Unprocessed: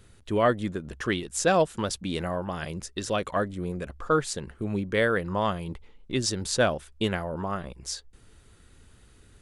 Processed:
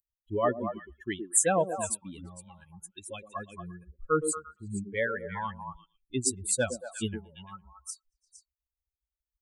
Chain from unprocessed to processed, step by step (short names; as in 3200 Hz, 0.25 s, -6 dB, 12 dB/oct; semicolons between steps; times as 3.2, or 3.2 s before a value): per-bin expansion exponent 3; resonant high shelf 6700 Hz +9 dB, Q 3; delay with a stepping band-pass 0.115 s, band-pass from 330 Hz, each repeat 1.4 oct, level -3 dB